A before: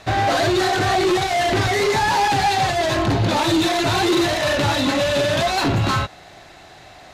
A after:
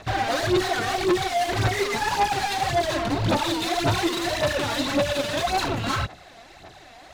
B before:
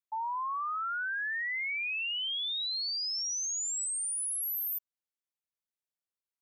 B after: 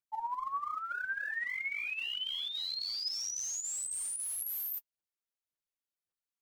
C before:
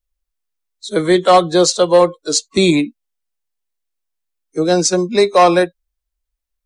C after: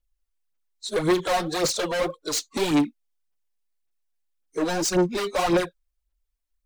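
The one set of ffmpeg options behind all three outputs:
-af "volume=8.41,asoftclip=hard,volume=0.119,aphaser=in_gain=1:out_gain=1:delay=4.4:decay=0.61:speed=1.8:type=sinusoidal,volume=0.531"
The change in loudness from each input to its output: -5.5 LU, -3.5 LU, -10.5 LU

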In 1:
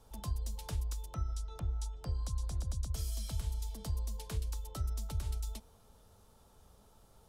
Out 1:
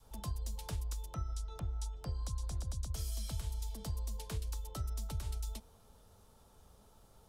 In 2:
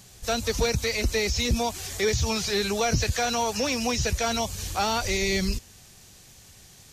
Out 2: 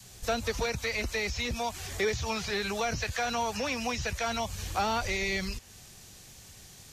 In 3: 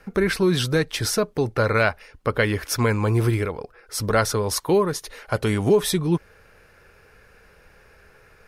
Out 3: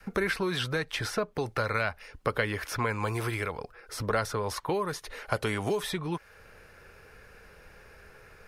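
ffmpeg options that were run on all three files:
-filter_complex "[0:a]acrossover=split=430|3000[s0][s1][s2];[s0]acompressor=threshold=0.02:ratio=4[s3];[s1]acompressor=threshold=0.0501:ratio=4[s4];[s2]acompressor=threshold=0.00708:ratio=4[s5];[s3][s4][s5]amix=inputs=3:normalize=0,adynamicequalizer=threshold=0.00708:dfrequency=390:dqfactor=0.91:tfrequency=390:tqfactor=0.91:attack=5:release=100:ratio=0.375:range=3:mode=cutabove:tftype=bell"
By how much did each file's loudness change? -2.0 LU, -5.5 LU, -9.0 LU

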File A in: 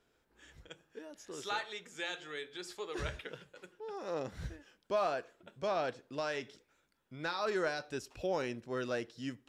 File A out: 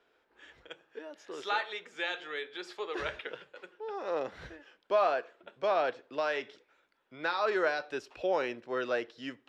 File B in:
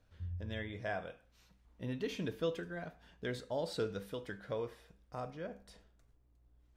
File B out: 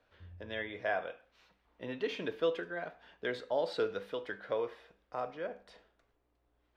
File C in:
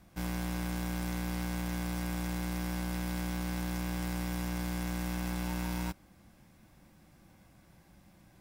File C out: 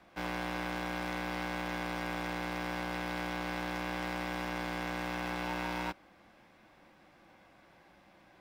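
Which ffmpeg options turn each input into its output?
-filter_complex "[0:a]acrossover=split=320 4200:gain=0.141 1 0.126[s0][s1][s2];[s0][s1][s2]amix=inputs=3:normalize=0,volume=2"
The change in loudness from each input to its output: +5.0 LU, +4.0 LU, -0.5 LU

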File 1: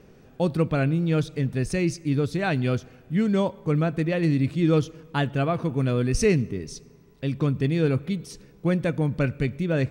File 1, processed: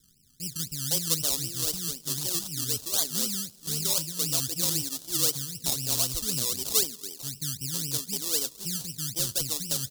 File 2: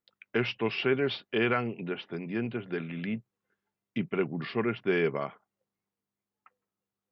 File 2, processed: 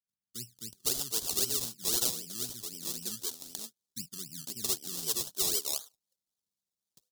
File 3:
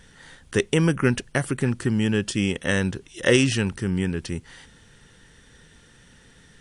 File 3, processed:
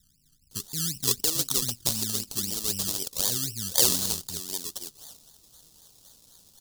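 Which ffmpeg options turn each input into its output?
-filter_complex "[0:a]acrossover=split=270[s0][s1];[s1]adelay=510[s2];[s0][s2]amix=inputs=2:normalize=0,acrusher=samples=23:mix=1:aa=0.000001:lfo=1:lforange=13.8:lforate=3.9,aexciter=amount=11:drive=7.8:freq=3400,volume=0.211"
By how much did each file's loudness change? -2.0 LU, -0.5 LU, -2.0 LU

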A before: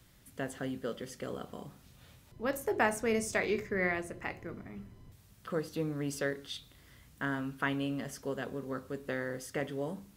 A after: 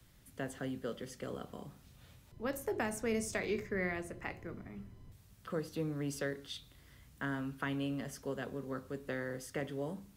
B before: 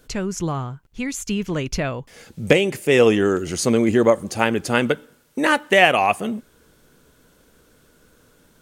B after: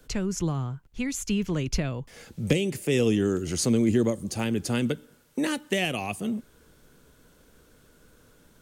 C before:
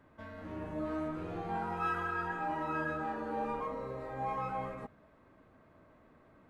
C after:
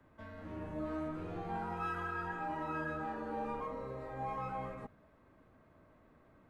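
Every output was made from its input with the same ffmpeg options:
-filter_complex "[0:a]lowshelf=f=110:g=4.5,acrossover=split=110|360|3200[s0][s1][s2][s3];[s2]acompressor=threshold=0.0251:ratio=6[s4];[s0][s1][s4][s3]amix=inputs=4:normalize=0,volume=0.708"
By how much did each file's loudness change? -4.0 LU, -8.0 LU, -3.0 LU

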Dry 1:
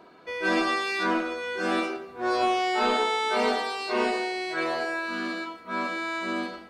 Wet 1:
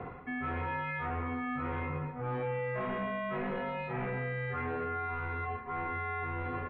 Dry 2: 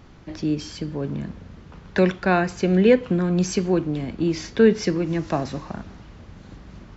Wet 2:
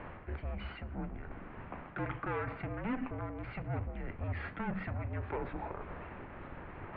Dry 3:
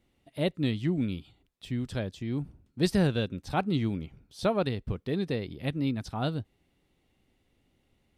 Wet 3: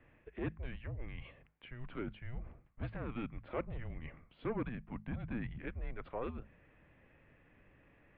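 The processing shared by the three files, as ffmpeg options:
-af "acontrast=61,aresample=11025,asoftclip=type=tanh:threshold=0.112,aresample=44100,alimiter=limit=0.0794:level=0:latency=1:release=89,areverse,acompressor=threshold=0.0112:ratio=8,areverse,bandreject=f=50:t=h:w=6,bandreject=f=100:t=h:w=6,bandreject=f=150:t=h:w=6,bandreject=f=200:t=h:w=6,bandreject=f=250:t=h:w=6,bandreject=f=300:t=h:w=6,bandreject=f=350:t=h:w=6,bandreject=f=400:t=h:w=6,bandreject=f=450:t=h:w=6,highpass=f=270:t=q:w=0.5412,highpass=f=270:t=q:w=1.307,lowpass=f=2600:t=q:w=0.5176,lowpass=f=2600:t=q:w=0.7071,lowpass=f=2600:t=q:w=1.932,afreqshift=-240,volume=1.88"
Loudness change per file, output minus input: -8.5 LU, -18.5 LU, -13.0 LU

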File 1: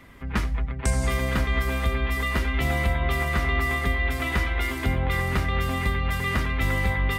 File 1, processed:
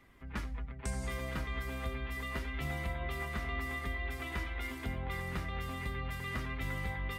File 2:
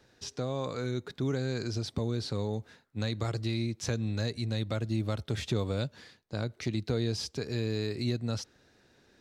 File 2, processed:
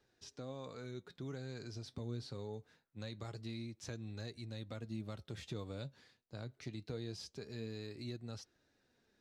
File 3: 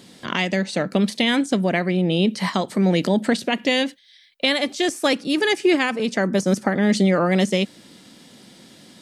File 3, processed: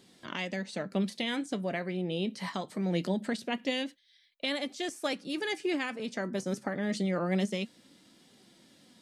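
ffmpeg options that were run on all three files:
-af "flanger=delay=2.4:depth=5.9:regen=69:speed=0.24:shape=triangular,volume=0.376"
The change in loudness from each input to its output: -13.5 LU, -13.0 LU, -12.5 LU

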